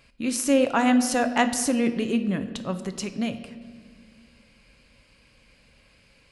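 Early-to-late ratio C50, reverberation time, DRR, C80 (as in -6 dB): 11.5 dB, 1.7 s, 9.0 dB, 12.5 dB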